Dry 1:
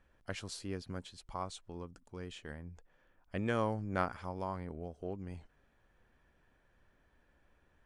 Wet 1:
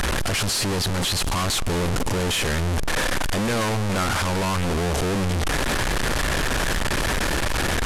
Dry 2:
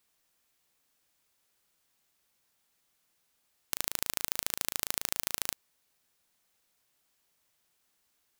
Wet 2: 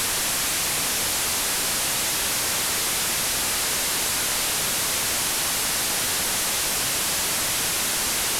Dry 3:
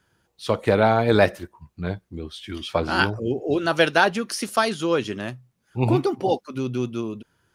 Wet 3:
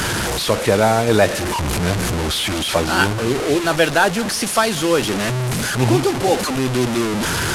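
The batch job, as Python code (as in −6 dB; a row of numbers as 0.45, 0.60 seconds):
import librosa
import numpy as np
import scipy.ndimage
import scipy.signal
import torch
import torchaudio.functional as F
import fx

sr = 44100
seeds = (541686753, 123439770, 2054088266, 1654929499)

p1 = fx.delta_mod(x, sr, bps=64000, step_db=-21.5)
p2 = fx.rider(p1, sr, range_db=10, speed_s=0.5)
p3 = p1 + (p2 * 10.0 ** (-2.0 / 20.0))
p4 = 10.0 ** (-2.5 / 20.0) * np.tanh(p3 / 10.0 ** (-2.5 / 20.0))
y = p4 + 10.0 ** (-20.5 / 20.0) * np.pad(p4, (int(199 * sr / 1000.0), 0))[:len(p4)]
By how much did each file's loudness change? +17.5, +11.5, +5.0 LU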